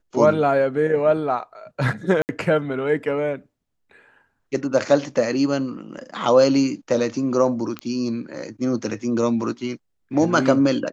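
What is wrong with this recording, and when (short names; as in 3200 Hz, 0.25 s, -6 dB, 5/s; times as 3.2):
2.22–2.29 gap 69 ms
7.79 pop -16 dBFS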